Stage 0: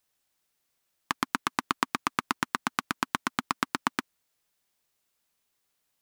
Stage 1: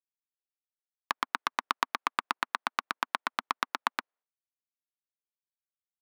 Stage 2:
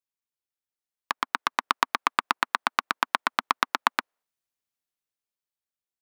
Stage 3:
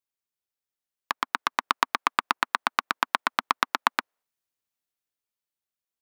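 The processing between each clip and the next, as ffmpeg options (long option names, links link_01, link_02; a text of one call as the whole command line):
ffmpeg -i in.wav -af "highpass=590,adynamicsmooth=sensitivity=1:basefreq=1300,agate=range=-33dB:threshold=-59dB:ratio=3:detection=peak" out.wav
ffmpeg -i in.wav -af "dynaudnorm=framelen=290:gausssize=9:maxgain=11.5dB" out.wav
ffmpeg -i in.wav -af "equalizer=frequency=15000:width=7:gain=7.5" out.wav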